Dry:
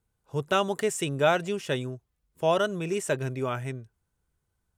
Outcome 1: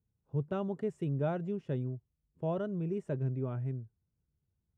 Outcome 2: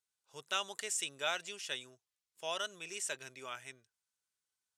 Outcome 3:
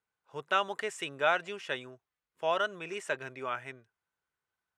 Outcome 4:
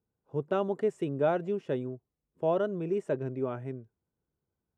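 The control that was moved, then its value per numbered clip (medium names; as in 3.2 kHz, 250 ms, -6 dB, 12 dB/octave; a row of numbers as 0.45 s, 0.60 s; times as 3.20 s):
band-pass filter, frequency: 130 Hz, 5.5 kHz, 1.7 kHz, 320 Hz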